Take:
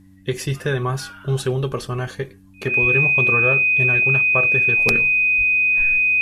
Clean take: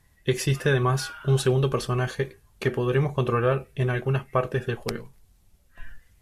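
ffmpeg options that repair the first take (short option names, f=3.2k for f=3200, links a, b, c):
-filter_complex "[0:a]bandreject=f=95.4:t=h:w=4,bandreject=f=190.8:t=h:w=4,bandreject=f=286.2:t=h:w=4,bandreject=f=2.5k:w=30,asplit=3[a][b][c];[a]afade=t=out:st=2.81:d=0.02[d];[b]highpass=f=140:w=0.5412,highpass=f=140:w=1.3066,afade=t=in:st=2.81:d=0.02,afade=t=out:st=2.93:d=0.02[e];[c]afade=t=in:st=2.93:d=0.02[f];[d][e][f]amix=inputs=3:normalize=0,asplit=3[g][h][i];[g]afade=t=out:st=5.37:d=0.02[j];[h]highpass=f=140:w=0.5412,highpass=f=140:w=1.3066,afade=t=in:st=5.37:d=0.02,afade=t=out:st=5.49:d=0.02[k];[i]afade=t=in:st=5.49:d=0.02[l];[j][k][l]amix=inputs=3:normalize=0,asetnsamples=n=441:p=0,asendcmd='4.79 volume volume -6.5dB',volume=0dB"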